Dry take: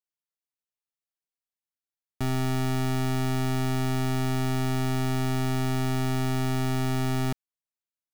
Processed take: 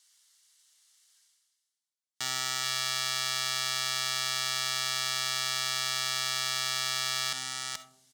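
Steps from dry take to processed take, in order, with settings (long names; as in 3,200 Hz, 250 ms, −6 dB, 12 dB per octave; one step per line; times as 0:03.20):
meter weighting curve ITU-R 468
single-tap delay 429 ms −13 dB
in parallel at +2 dB: brickwall limiter −21 dBFS, peak gain reduction 9 dB
on the sum: noise reduction from a noise print of the clip's start 9 dB
reversed playback
upward compression, threshold −31 dBFS
reversed playback
leveller curve on the samples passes 2
high-pass filter 62 Hz
parametric band 310 Hz −13.5 dB 2.5 octaves
notch filter 2,500 Hz, Q 5.6
comb and all-pass reverb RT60 0.73 s, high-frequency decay 0.25×, pre-delay 10 ms, DRR 12.5 dB
level −4.5 dB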